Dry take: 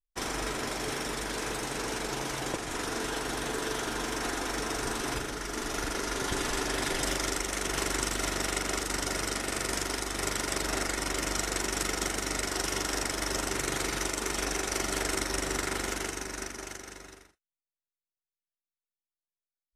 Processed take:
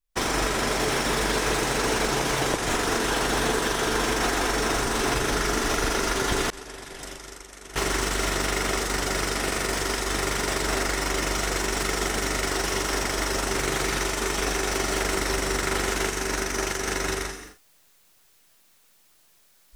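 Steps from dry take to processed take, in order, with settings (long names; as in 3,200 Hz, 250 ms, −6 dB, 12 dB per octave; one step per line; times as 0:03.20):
camcorder AGC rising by 42 dB per second
reverb whose tail is shaped and stops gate 240 ms rising, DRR 9.5 dB
0:06.50–0:07.76: downward expander −18 dBFS
slew-rate limiting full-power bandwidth 140 Hz
level +5 dB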